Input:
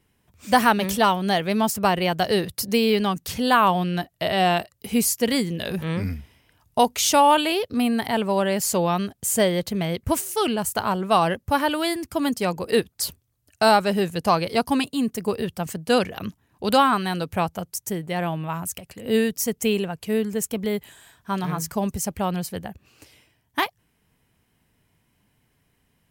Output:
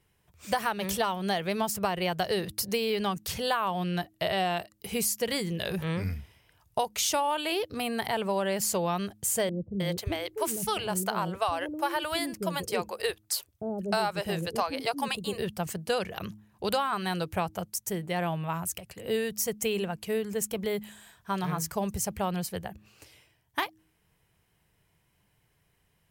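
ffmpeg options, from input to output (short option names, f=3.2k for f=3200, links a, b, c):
-filter_complex "[0:a]asettb=1/sr,asplit=3[a][b][c];[a]atrim=end=9.494[d];[b]atrim=start=9.49:end=15.38,asetpts=PTS-STARTPTS,afade=t=in:d=0.004:c=qsin,afade=t=out:st=5.886:d=0.004:c=qsin,acrossover=split=420[e][f];[f]adelay=310[g];[e][g]amix=inputs=2:normalize=0,atrim=end_sample=259749[h];[c]atrim=start=15.376[i];[d][h]acrossfade=d=0.004:c1=hsin:c2=qsin[j];[j][i]acrossfade=d=0.004:c1=qsin:c2=hsin,equalizer=f=250:t=o:w=0.29:g=-14.5,bandreject=f=105.6:t=h:w=4,bandreject=f=211.2:t=h:w=4,bandreject=f=316.8:t=h:w=4,acompressor=threshold=-22dB:ratio=6,volume=-2.5dB"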